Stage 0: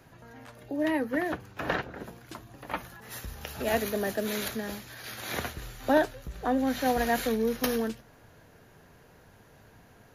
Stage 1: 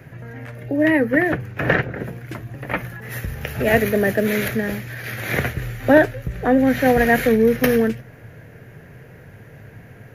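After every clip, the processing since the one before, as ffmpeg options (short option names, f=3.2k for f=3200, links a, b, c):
-af "equalizer=f=125:t=o:w=1:g=12,equalizer=f=500:t=o:w=1:g=5,equalizer=f=1k:t=o:w=1:g=-7,equalizer=f=2k:t=o:w=1:g=10,equalizer=f=4k:t=o:w=1:g=-8,equalizer=f=8k:t=o:w=1:g=-6,volume=8dB"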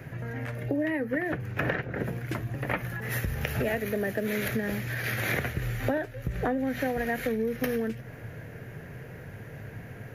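-af "acompressor=threshold=-25dB:ratio=16"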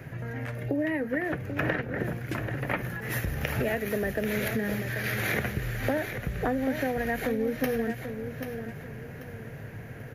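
-af "aecho=1:1:787|1574|2361|3148:0.376|0.12|0.0385|0.0123"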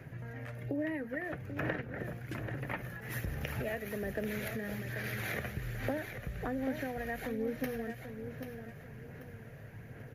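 -af "aphaser=in_gain=1:out_gain=1:delay=1.7:decay=0.25:speed=1.2:type=sinusoidal,volume=-9dB"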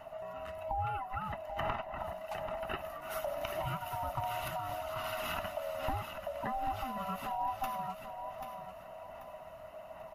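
-af "afftfilt=real='real(if(lt(b,1008),b+24*(1-2*mod(floor(b/24),2)),b),0)':imag='imag(if(lt(b,1008),b+24*(1-2*mod(floor(b/24),2)),b),0)':win_size=2048:overlap=0.75"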